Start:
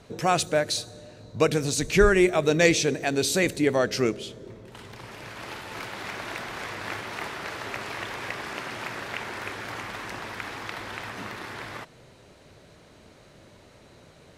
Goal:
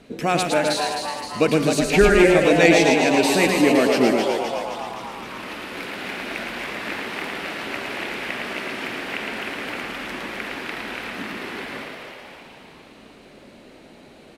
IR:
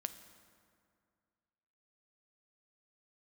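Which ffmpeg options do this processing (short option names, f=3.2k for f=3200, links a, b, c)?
-filter_complex "[0:a]equalizer=f=100:t=o:w=0.67:g=-12,equalizer=f=250:t=o:w=0.67:g=9,equalizer=f=1k:t=o:w=0.67:g=-4,equalizer=f=2.5k:t=o:w=0.67:g=4,equalizer=f=6.3k:t=o:w=0.67:g=-5,asplit=9[a][b][c][d][e][f][g][h][i];[b]adelay=260,afreqshift=140,volume=-6dB[j];[c]adelay=520,afreqshift=280,volume=-10.6dB[k];[d]adelay=780,afreqshift=420,volume=-15.2dB[l];[e]adelay=1040,afreqshift=560,volume=-19.7dB[m];[f]adelay=1300,afreqshift=700,volume=-24.3dB[n];[g]adelay=1560,afreqshift=840,volume=-28.9dB[o];[h]adelay=1820,afreqshift=980,volume=-33.5dB[p];[i]adelay=2080,afreqshift=1120,volume=-38.1dB[q];[a][j][k][l][m][n][o][p][q]amix=inputs=9:normalize=0,asplit=2[r][s];[1:a]atrim=start_sample=2205,adelay=111[t];[s][t]afir=irnorm=-1:irlink=0,volume=-2dB[u];[r][u]amix=inputs=2:normalize=0,volume=1.5dB"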